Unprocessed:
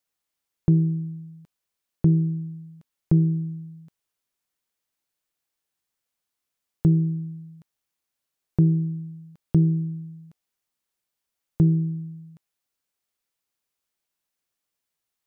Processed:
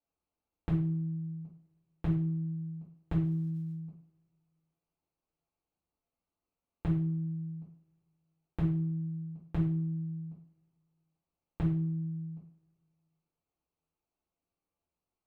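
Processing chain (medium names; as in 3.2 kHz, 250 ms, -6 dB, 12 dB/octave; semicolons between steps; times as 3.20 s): local Wiener filter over 25 samples; compression 2.5:1, threshold -40 dBFS, peak gain reduction 16.5 dB; 3.21–3.71 s: crackle 240 per s -> 69 per s -62 dBFS; two-slope reverb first 0.44 s, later 2.3 s, from -28 dB, DRR -8 dB; trim -4 dB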